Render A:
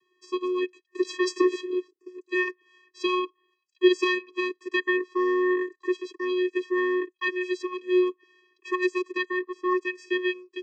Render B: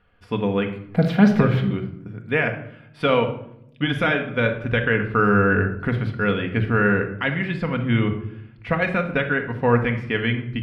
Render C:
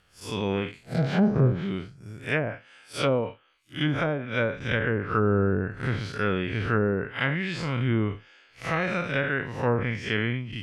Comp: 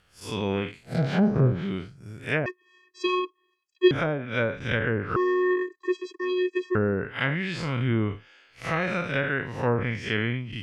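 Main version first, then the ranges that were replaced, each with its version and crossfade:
C
2.46–3.91 from A
5.16–6.75 from A
not used: B

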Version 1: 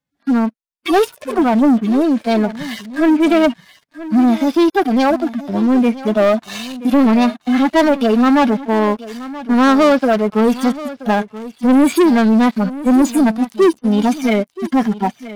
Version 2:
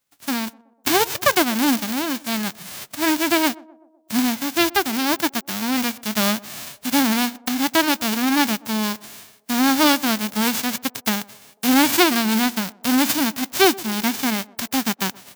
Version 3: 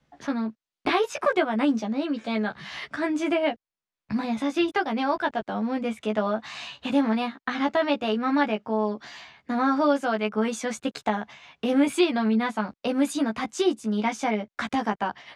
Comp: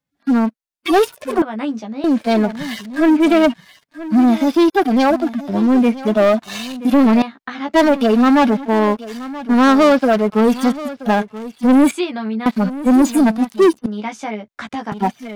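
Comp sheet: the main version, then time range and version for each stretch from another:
1
1.42–2.04 from 3
7.22–7.74 from 3
11.91–12.46 from 3
13.86–14.92 from 3
not used: 2

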